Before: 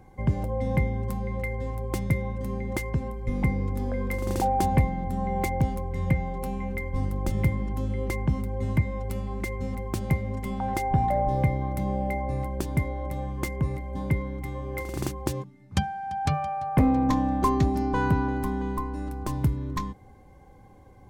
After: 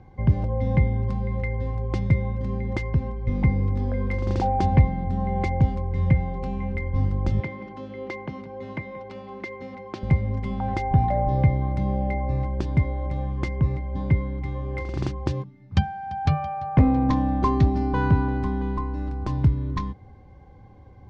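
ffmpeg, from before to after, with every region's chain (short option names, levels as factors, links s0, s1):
-filter_complex "[0:a]asettb=1/sr,asplit=3[s0][s1][s2];[s0]atrim=end=7.404[s3];[s1]atrim=start=7.4:end=10.03,asetpts=PTS-STARTPTS,afade=t=in:d=0.004:c=qsin,afade=t=out:st=2.626:d=0.004:c=qsin,highpass=330,lowpass=5600,aecho=1:1:179:0.141,atrim=end_sample=115983[s4];[s2]atrim=start=10.026[s5];[s3][s4]acrossfade=d=0.004:c1=hsin:c2=qsin[s6];[s6][s5]acrossfade=d=0.004:c1=qsin:c2=hsin,lowpass=f=5100:w=0.5412,lowpass=f=5100:w=1.3066,equalizer=f=89:t=o:w=1.7:g=7"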